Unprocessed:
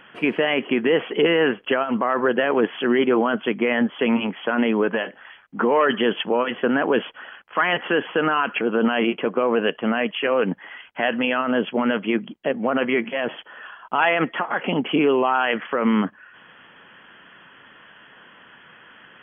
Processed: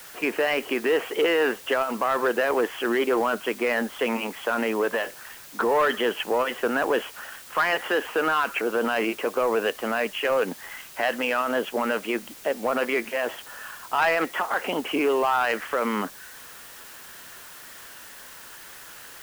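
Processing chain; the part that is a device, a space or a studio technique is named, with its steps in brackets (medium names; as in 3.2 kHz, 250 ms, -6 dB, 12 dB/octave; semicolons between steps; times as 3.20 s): tape answering machine (band-pass 390–3000 Hz; saturation -13.5 dBFS, distortion -19 dB; wow and flutter; white noise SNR 19 dB)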